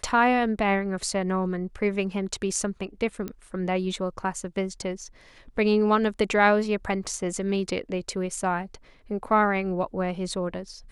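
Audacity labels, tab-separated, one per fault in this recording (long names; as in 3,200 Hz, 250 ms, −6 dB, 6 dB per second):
3.280000	3.280000	click −19 dBFS
7.040000	7.050000	drop-out 6.2 ms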